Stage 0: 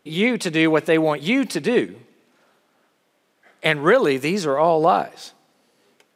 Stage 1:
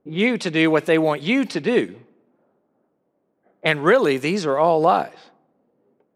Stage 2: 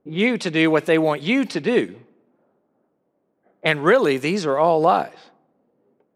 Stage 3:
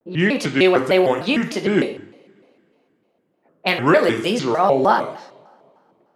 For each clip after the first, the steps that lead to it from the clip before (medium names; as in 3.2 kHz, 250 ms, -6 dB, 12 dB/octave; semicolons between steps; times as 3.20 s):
level-controlled noise filter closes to 580 Hz, open at -16 dBFS
no audible change
two-slope reverb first 0.54 s, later 2.8 s, from -27 dB, DRR 4.5 dB; vibrato with a chosen wave square 3.3 Hz, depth 250 cents